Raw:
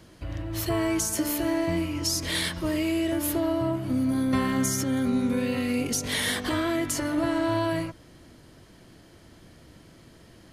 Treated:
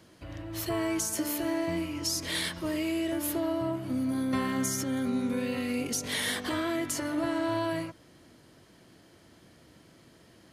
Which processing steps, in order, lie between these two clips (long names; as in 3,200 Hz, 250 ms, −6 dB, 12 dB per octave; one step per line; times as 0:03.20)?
high-pass filter 140 Hz 6 dB per octave
level −3.5 dB